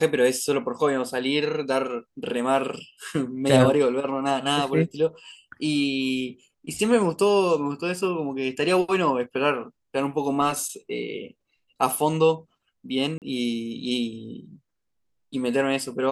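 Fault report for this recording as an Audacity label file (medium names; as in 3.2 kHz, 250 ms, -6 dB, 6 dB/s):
13.180000	13.220000	dropout 38 ms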